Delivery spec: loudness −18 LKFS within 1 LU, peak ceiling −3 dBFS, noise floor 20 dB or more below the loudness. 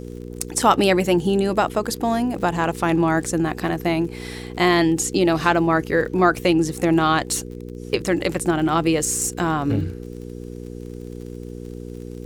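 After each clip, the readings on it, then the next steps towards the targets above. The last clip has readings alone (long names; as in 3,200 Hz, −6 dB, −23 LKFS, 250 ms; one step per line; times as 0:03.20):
crackle rate 40 per second; mains hum 60 Hz; hum harmonics up to 480 Hz; level of the hum −31 dBFS; integrated loudness −20.5 LKFS; sample peak −2.5 dBFS; target loudness −18.0 LKFS
→ click removal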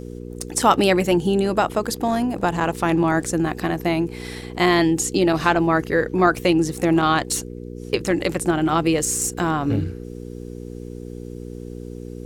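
crackle rate 0.65 per second; mains hum 60 Hz; hum harmonics up to 480 Hz; level of the hum −31 dBFS
→ hum removal 60 Hz, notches 8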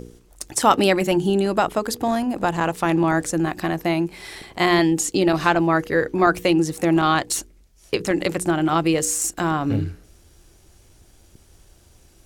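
mains hum none found; integrated loudness −20.5 LKFS; sample peak −2.0 dBFS; target loudness −18.0 LKFS
→ level +2.5 dB
brickwall limiter −3 dBFS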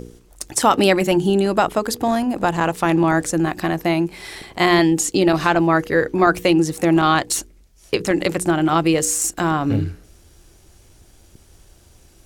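integrated loudness −18.5 LKFS; sample peak −3.0 dBFS; background noise floor −51 dBFS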